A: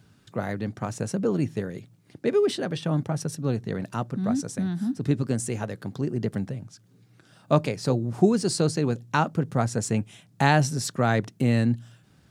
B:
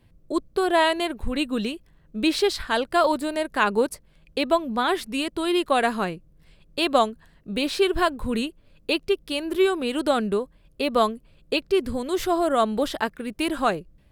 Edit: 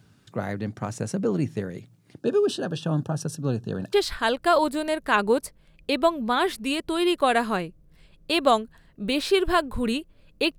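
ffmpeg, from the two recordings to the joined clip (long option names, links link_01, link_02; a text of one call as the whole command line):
ffmpeg -i cue0.wav -i cue1.wav -filter_complex "[0:a]asettb=1/sr,asplit=3[link_01][link_02][link_03];[link_01]atrim=end=2.214[link_04];[link_02]atrim=start=2.21:end=3.93,asetpts=PTS-STARTPTS,afade=type=in:duration=0.004:curve=qsin,afade=type=out:start_time=1.716:duration=0.004:curve=qsin,asuperstop=centerf=2100:order=20:qfactor=3.1[link_05];[link_03]atrim=start=3.926[link_06];[link_04][link_05]acrossfade=duration=0.004:curve1=hsin:curve2=qsin[link_07];[link_07][link_06]acrossfade=duration=0.004:curve1=qsin:curve2=hsin,apad=whole_dur=10.58,atrim=end=10.58,atrim=end=3.932[link_08];[1:a]atrim=start=2.408:end=9.06[link_09];[link_08][link_09]acrossfade=duration=0.004:curve1=hsin:curve2=hsin" out.wav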